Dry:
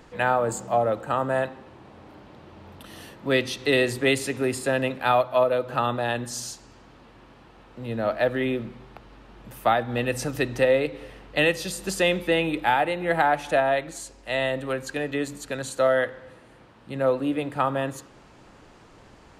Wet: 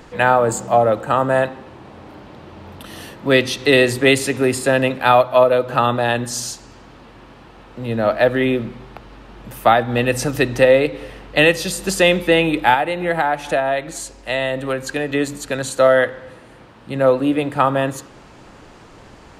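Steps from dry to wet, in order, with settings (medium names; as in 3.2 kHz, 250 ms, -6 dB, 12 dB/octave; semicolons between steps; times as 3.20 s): 12.74–15.10 s: compression 2:1, threshold -27 dBFS, peak gain reduction 6 dB; trim +8 dB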